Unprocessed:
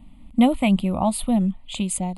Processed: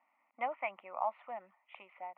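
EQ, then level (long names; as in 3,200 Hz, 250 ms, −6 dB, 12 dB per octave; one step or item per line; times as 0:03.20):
Bessel high-pass filter 1,100 Hz, order 4
Butterworth low-pass 2,200 Hz 48 dB per octave
high-frequency loss of the air 62 metres
−3.0 dB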